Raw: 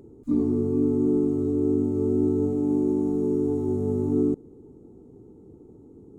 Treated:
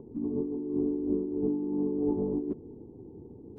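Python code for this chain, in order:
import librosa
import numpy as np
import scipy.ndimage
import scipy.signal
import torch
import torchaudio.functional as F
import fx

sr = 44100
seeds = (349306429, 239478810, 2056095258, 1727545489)

y = scipy.signal.sosfilt(scipy.signal.butter(12, 1100.0, 'lowpass', fs=sr, output='sos'), x)
y = fx.dynamic_eq(y, sr, hz=190.0, q=1.2, threshold_db=-34.0, ratio=4.0, max_db=4)
y = fx.over_compress(y, sr, threshold_db=-25.0, ratio=-0.5)
y = fx.stretch_vocoder_free(y, sr, factor=0.58)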